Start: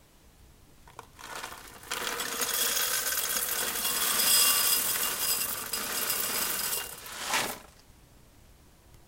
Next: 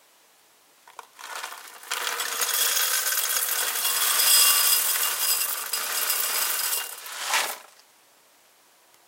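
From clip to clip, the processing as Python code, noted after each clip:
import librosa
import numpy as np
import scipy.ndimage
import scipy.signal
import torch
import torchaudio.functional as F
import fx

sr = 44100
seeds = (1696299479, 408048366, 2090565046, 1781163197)

y = scipy.signal.sosfilt(scipy.signal.butter(2, 610.0, 'highpass', fs=sr, output='sos'), x)
y = y * 10.0 ** (5.0 / 20.0)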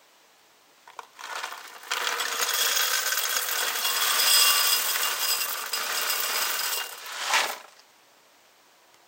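y = fx.peak_eq(x, sr, hz=11000.0, db=-14.0, octaves=0.51)
y = y * 10.0 ** (1.5 / 20.0)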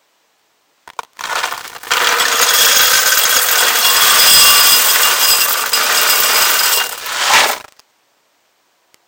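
y = fx.leveller(x, sr, passes=3)
y = y * 10.0 ** (5.0 / 20.0)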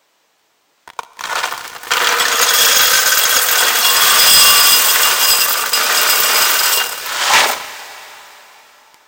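y = fx.rev_plate(x, sr, seeds[0], rt60_s=3.9, hf_ratio=0.9, predelay_ms=0, drr_db=13.5)
y = y * 10.0 ** (-1.0 / 20.0)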